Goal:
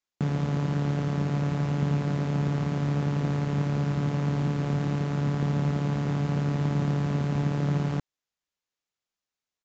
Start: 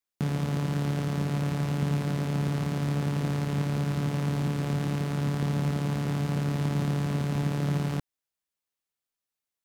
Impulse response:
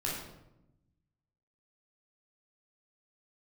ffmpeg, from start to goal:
-filter_complex "[0:a]acrossover=split=1500[link_01][link_02];[link_02]asoftclip=type=tanh:threshold=-37.5dB[link_03];[link_01][link_03]amix=inputs=2:normalize=0,aresample=16000,aresample=44100,volume=1.5dB"

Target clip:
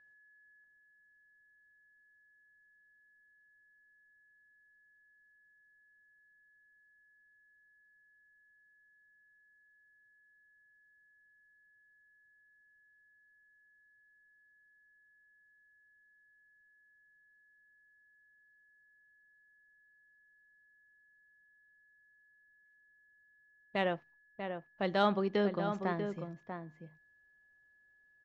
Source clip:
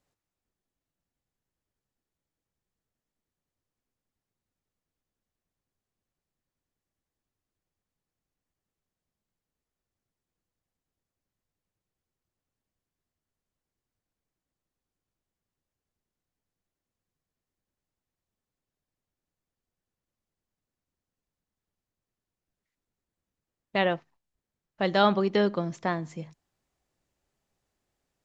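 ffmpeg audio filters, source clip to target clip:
ffmpeg -i in.wav -filter_complex "[0:a]aeval=exprs='val(0)+0.002*sin(2*PI*1700*n/s)':channel_layout=same,asplit=2[link_01][link_02];[link_02]adelay=641.4,volume=-7dB,highshelf=frequency=4000:gain=-14.4[link_03];[link_01][link_03]amix=inputs=2:normalize=0,adynamicsmooth=sensitivity=0.5:basefreq=5200,volume=-7dB" out.wav

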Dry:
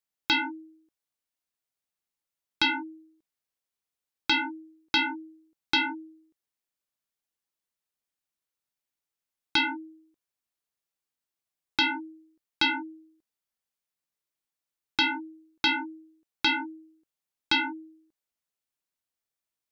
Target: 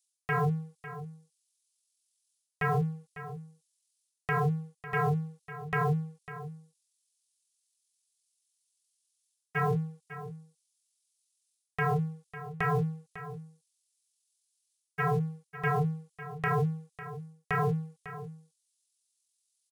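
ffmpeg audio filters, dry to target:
ffmpeg -i in.wav -filter_complex "[0:a]asetrate=22050,aresample=44100,atempo=2,acrossover=split=3000[link_01][link_02];[link_01]aeval=exprs='sgn(val(0))*max(abs(val(0))-0.00168,0)':channel_layout=same[link_03];[link_03][link_02]amix=inputs=2:normalize=0,aemphasis=mode=production:type=50kf,areverse,acompressor=threshold=-34dB:ratio=16,areverse,lowshelf=frequency=220:gain=9,aecho=1:1:550:0.211,volume=5.5dB" out.wav

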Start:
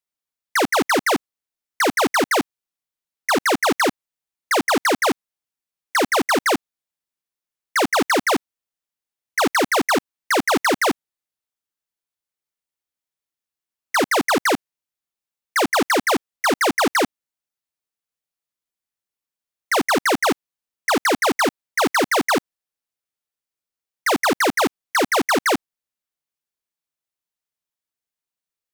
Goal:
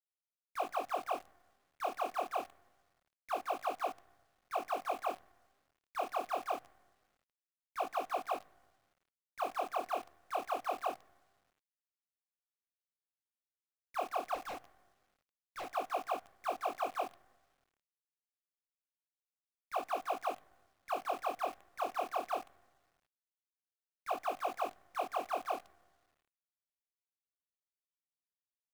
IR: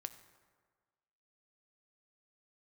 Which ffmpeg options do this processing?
-filter_complex "[0:a]asplit=3[link_01][link_02][link_03];[link_01]bandpass=frequency=730:width_type=q:width=8,volume=0dB[link_04];[link_02]bandpass=frequency=1090:width_type=q:width=8,volume=-6dB[link_05];[link_03]bandpass=frequency=2440:width_type=q:width=8,volume=-9dB[link_06];[link_04][link_05][link_06]amix=inputs=3:normalize=0,asplit=2[link_07][link_08];[1:a]atrim=start_sample=2205[link_09];[link_08][link_09]afir=irnorm=-1:irlink=0,volume=-3dB[link_10];[link_07][link_10]amix=inputs=2:normalize=0,flanger=delay=18.5:depth=7.3:speed=0.25,asettb=1/sr,asplit=3[link_11][link_12][link_13];[link_11]atrim=end=14.354[link_14];[link_12]atrim=start=14.35:end=15.75,asetpts=PTS-STARTPTS,afade=type=in:duration=0.004:curve=qsin,afade=type=out:start_time=1.396:duration=0.004:curve=qsin,volume=32.5dB,asoftclip=hard,volume=-32.5dB[link_15];[link_13]atrim=start=15.746[link_16];[link_14][link_15]acrossfade=duration=0.004:curve1=hsin:curve2=qsin[link_17];[link_17][link_16]acrossfade=duration=0.004:curve1=qsin:curve2=hsin,acrusher=bits=8:dc=4:mix=0:aa=0.000001,volume=-8.5dB"

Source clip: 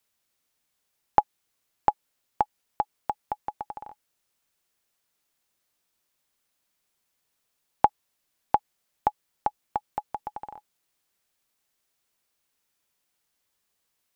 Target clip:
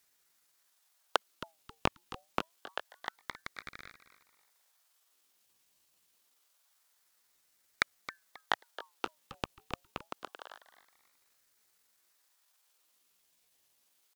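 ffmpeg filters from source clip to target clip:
ffmpeg -i in.wav -filter_complex "[0:a]asuperstop=centerf=740:order=8:qfactor=0.79,asetrate=62367,aresample=44100,atempo=0.707107,asplit=2[link_01][link_02];[link_02]asplit=3[link_03][link_04][link_05];[link_03]adelay=268,afreqshift=81,volume=-14dB[link_06];[link_04]adelay=536,afreqshift=162,volume=-24.2dB[link_07];[link_05]adelay=804,afreqshift=243,volume=-34.3dB[link_08];[link_06][link_07][link_08]amix=inputs=3:normalize=0[link_09];[link_01][link_09]amix=inputs=2:normalize=0,aeval=exprs='val(0)*sin(2*PI*1200*n/s+1200*0.5/0.26*sin(2*PI*0.26*n/s))':channel_layout=same,volume=10dB" out.wav

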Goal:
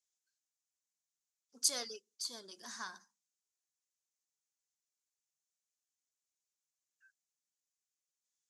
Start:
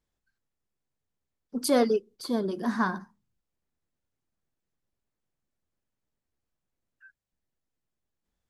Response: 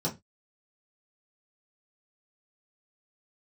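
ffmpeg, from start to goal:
-af "bandpass=frequency=6600:width_type=q:width=2.9:csg=0,volume=8dB"

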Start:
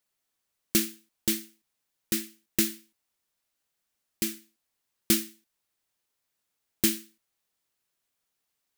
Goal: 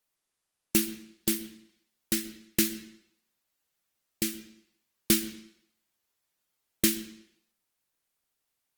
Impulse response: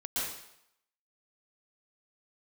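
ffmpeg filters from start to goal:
-filter_complex "[0:a]asplit=2[link_01][link_02];[1:a]atrim=start_sample=2205,lowpass=5100[link_03];[link_02][link_03]afir=irnorm=-1:irlink=0,volume=-19.5dB[link_04];[link_01][link_04]amix=inputs=2:normalize=0" -ar 48000 -c:a libopus -b:a 24k

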